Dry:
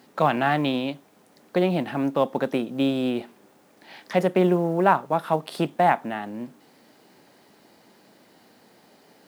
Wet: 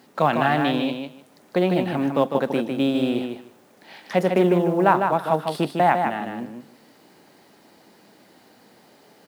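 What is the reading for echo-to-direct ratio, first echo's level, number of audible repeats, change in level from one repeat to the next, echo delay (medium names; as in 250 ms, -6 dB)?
-5.5 dB, -5.5 dB, 2, -15.5 dB, 152 ms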